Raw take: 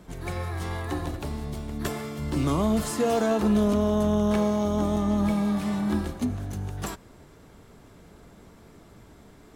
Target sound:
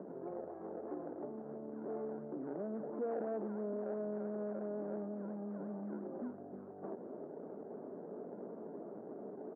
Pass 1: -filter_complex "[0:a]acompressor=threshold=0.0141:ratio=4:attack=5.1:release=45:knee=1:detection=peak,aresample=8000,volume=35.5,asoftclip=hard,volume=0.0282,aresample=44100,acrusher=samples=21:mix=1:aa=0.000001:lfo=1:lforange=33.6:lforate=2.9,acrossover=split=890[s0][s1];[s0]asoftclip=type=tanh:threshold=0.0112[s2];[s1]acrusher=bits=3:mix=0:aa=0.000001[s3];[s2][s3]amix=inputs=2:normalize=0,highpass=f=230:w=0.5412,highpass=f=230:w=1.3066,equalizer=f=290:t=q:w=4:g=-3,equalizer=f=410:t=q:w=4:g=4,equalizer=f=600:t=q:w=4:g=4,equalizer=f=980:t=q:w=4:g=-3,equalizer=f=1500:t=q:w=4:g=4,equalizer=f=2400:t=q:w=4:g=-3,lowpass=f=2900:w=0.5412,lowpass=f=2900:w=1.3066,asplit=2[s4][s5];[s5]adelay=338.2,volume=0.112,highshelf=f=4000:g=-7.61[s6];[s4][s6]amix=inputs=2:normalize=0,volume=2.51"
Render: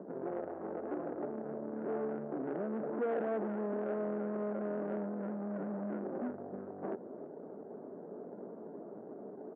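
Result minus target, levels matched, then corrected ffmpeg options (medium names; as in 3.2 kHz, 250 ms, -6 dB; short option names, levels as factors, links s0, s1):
compression: peak gain reduction -8 dB
-filter_complex "[0:a]acompressor=threshold=0.00422:ratio=4:attack=5.1:release=45:knee=1:detection=peak,aresample=8000,volume=35.5,asoftclip=hard,volume=0.0282,aresample=44100,acrusher=samples=21:mix=1:aa=0.000001:lfo=1:lforange=33.6:lforate=2.9,acrossover=split=890[s0][s1];[s0]asoftclip=type=tanh:threshold=0.0112[s2];[s1]acrusher=bits=3:mix=0:aa=0.000001[s3];[s2][s3]amix=inputs=2:normalize=0,highpass=f=230:w=0.5412,highpass=f=230:w=1.3066,equalizer=f=290:t=q:w=4:g=-3,equalizer=f=410:t=q:w=4:g=4,equalizer=f=600:t=q:w=4:g=4,equalizer=f=980:t=q:w=4:g=-3,equalizer=f=1500:t=q:w=4:g=4,equalizer=f=2400:t=q:w=4:g=-3,lowpass=f=2900:w=0.5412,lowpass=f=2900:w=1.3066,asplit=2[s4][s5];[s5]adelay=338.2,volume=0.112,highshelf=f=4000:g=-7.61[s6];[s4][s6]amix=inputs=2:normalize=0,volume=2.51"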